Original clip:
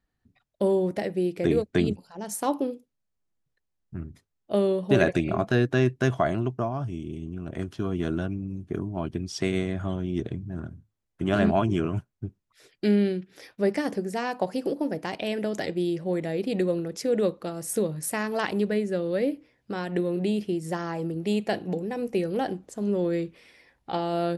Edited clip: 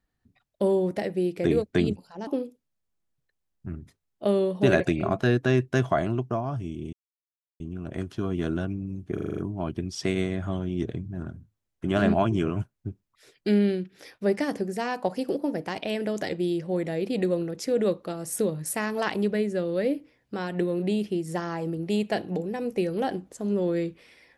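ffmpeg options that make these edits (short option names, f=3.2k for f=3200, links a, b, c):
-filter_complex "[0:a]asplit=9[a][b][c][d][e][f][g][h][i];[a]atrim=end=2.272[j];[b]atrim=start=2.548:end=7.21,asetpts=PTS-STARTPTS,afade=t=out:st=4.658:d=0.004:c=hsin,apad=pad_dur=0.67[k];[c]atrim=start=7.21:end=8.792,asetpts=PTS-STARTPTS,afade=t=in:d=0.004:c=hsin[l];[d]atrim=start=8.748:end=8.792[m];[e]atrim=start=8.748:end=8.792[n];[f]atrim=start=8.748:end=8.792[o];[g]atrim=start=8.748:end=8.792[p];[h]atrim=start=8.748:end=8.792[q];[i]atrim=start=8.748[r];[k][l]concat=n=2:v=0:a=1[s];[j][s]acrossfade=d=0.004:c1=hsin:c2=hsin[t];[t][m]acrossfade=d=0.004:c1=hsin:c2=hsin[u];[u][n]acrossfade=d=0.004:c1=hsin:c2=hsin[v];[v][o]acrossfade=d=0.004:c1=hsin:c2=hsin[w];[w][p]acrossfade=d=0.004:c1=hsin:c2=hsin[x];[x][q]acrossfade=d=0.004:c1=hsin:c2=hsin[y];[y][r]acrossfade=d=0.004:c1=hsin:c2=hsin"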